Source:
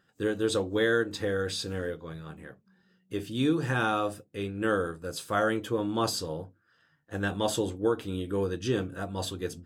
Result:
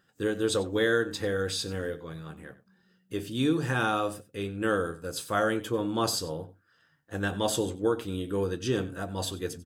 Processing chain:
high-shelf EQ 5,800 Hz +4.5 dB
slap from a distant wall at 16 metres, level −17 dB

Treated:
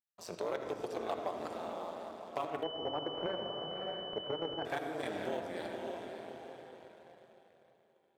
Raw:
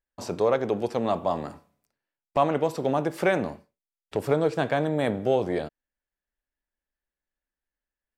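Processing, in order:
output level in coarse steps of 12 dB
feedback delay with all-pass diffusion 559 ms, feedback 44%, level −9 dB
amplitude modulation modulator 170 Hz, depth 85%
flanger 0.27 Hz, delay 1.5 ms, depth 2 ms, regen −56%
downward compressor 2.5 to 1, threshold −38 dBFS, peak gain reduction 8 dB
leveller curve on the samples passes 1
high-pass filter 90 Hz
spectral tilt +2 dB per octave
convolution reverb RT60 1.8 s, pre-delay 40 ms, DRR 6 dB
0:02.63–0:04.65: switching amplifier with a slow clock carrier 3,000 Hz
level +1 dB

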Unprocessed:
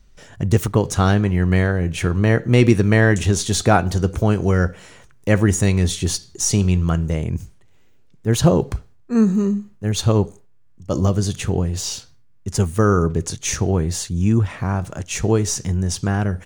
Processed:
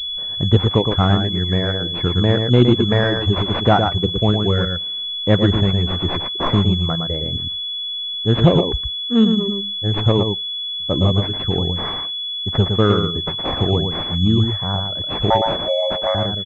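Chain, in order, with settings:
reverb reduction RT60 1.9 s
0:15.30–0:16.15: frequency shifter +450 Hz
single-tap delay 114 ms −5.5 dB
switching amplifier with a slow clock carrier 3,400 Hz
level +1.5 dB

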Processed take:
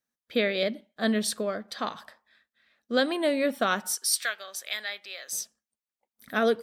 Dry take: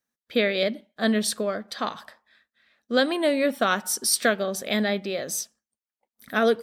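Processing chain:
0:03.95–0:05.33: high-pass filter 1,400 Hz 12 dB per octave
level −3 dB

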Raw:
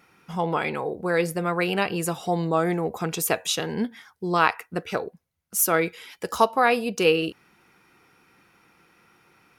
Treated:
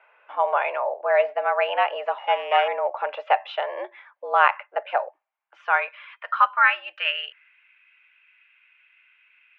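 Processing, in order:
0:02.18–0:02.68: samples sorted by size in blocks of 16 samples
high-pass filter sweep 570 Hz → 2,300 Hz, 0:04.89–0:07.73
single-sideband voice off tune +120 Hz 250–2,800 Hz

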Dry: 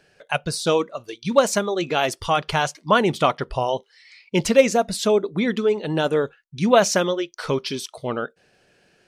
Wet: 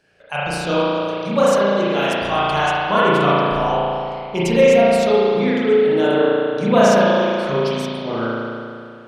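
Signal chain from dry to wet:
spring reverb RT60 2.4 s, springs 35 ms, chirp 45 ms, DRR −9 dB
level −5 dB

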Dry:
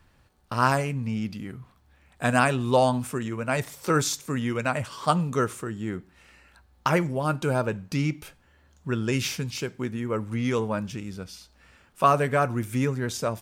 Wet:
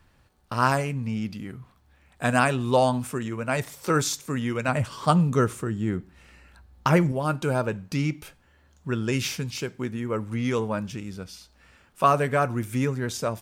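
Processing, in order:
0:04.68–0:07.12: low-shelf EQ 290 Hz +7.5 dB

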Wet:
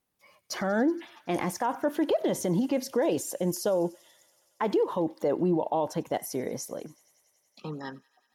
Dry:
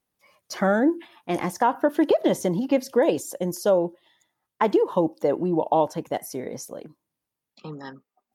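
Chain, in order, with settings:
brickwall limiter −18 dBFS, peak gain reduction 9 dB
delay with a high-pass on its return 94 ms, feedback 83%, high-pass 1,800 Hz, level −22.5 dB

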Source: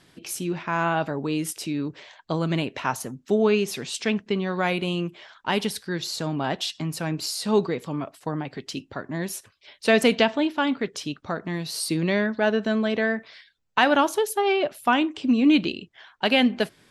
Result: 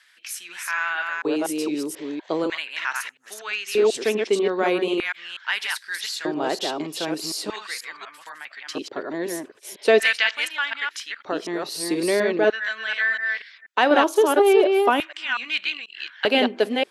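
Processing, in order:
delay that plays each chunk backwards 244 ms, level −3 dB
auto-filter high-pass square 0.4 Hz 380–1,700 Hz
level −1 dB

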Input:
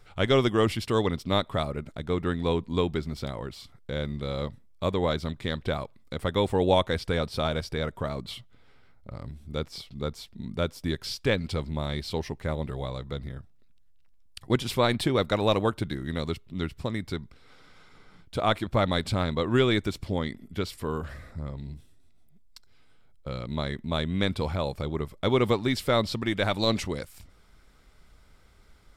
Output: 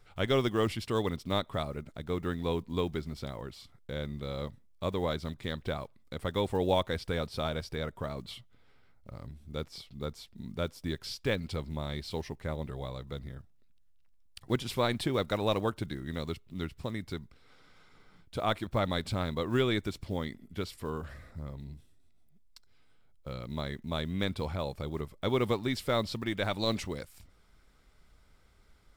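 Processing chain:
one scale factor per block 7 bits
level −5.5 dB

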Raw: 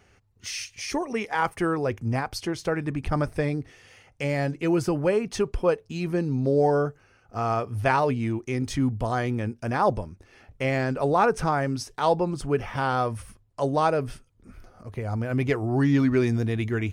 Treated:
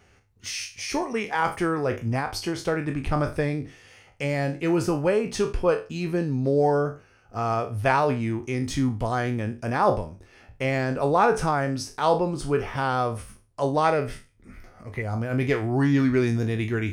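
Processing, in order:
peak hold with a decay on every bin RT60 0.31 s
0:13.84–0:15.02: parametric band 2,000 Hz +13 dB 0.34 octaves

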